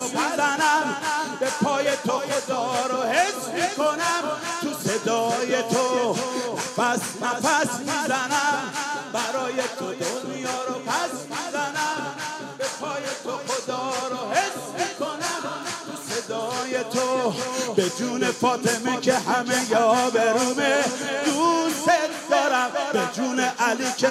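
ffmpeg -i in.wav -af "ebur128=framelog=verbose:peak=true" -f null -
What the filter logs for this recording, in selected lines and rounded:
Integrated loudness:
  I:         -23.8 LUFS
  Threshold: -33.8 LUFS
Loudness range:
  LRA:         6.1 LU
  Threshold: -44.0 LUFS
  LRA low:   -27.3 LUFS
  LRA high:  -21.2 LUFS
True peak:
  Peak:       -6.1 dBFS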